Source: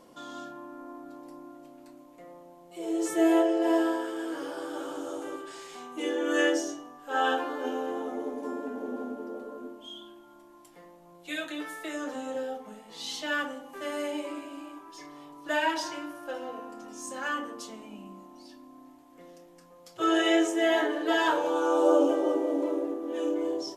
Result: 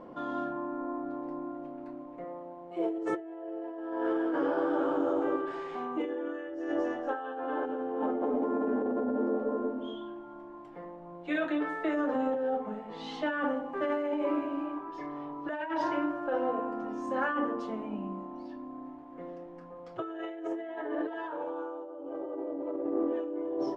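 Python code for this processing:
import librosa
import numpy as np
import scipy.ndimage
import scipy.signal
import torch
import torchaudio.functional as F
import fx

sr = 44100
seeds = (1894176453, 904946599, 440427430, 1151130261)

y = fx.low_shelf(x, sr, hz=170.0, db=-8.5, at=(2.24, 2.98))
y = fx.echo_alternate(y, sr, ms=118, hz=890.0, feedback_pct=62, wet_db=-6, at=(6.37, 9.95))
y = scipy.signal.sosfilt(scipy.signal.butter(2, 1400.0, 'lowpass', fs=sr, output='sos'), y)
y = fx.over_compress(y, sr, threshold_db=-36.0, ratio=-1.0)
y = y * 10.0 ** (3.0 / 20.0)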